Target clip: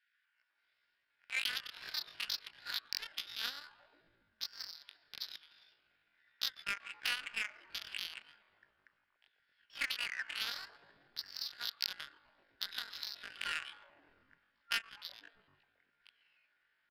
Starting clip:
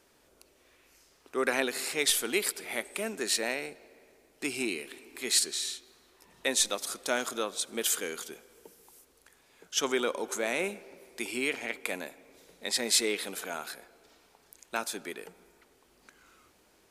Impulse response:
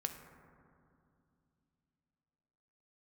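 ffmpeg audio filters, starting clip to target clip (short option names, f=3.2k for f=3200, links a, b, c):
-filter_complex "[0:a]afftfilt=real='re*between(b*sr/4096,690,2800)':imag='im*between(b*sr/4096,690,2800)':win_size=4096:overlap=0.75,acompressor=threshold=-37dB:ratio=6,asplit=7[a][b][c][d][e][f][g];[b]adelay=127,afreqshift=-140,volume=-17.5dB[h];[c]adelay=254,afreqshift=-280,volume=-21.7dB[i];[d]adelay=381,afreqshift=-420,volume=-25.8dB[j];[e]adelay=508,afreqshift=-560,volume=-30dB[k];[f]adelay=635,afreqshift=-700,volume=-34.1dB[l];[g]adelay=762,afreqshift=-840,volume=-38.3dB[m];[a][h][i][j][k][l][m]amix=inputs=7:normalize=0,asetrate=88200,aresample=44100,atempo=0.5,adynamicsmooth=sensitivity=8:basefreq=970,volume=7.5dB"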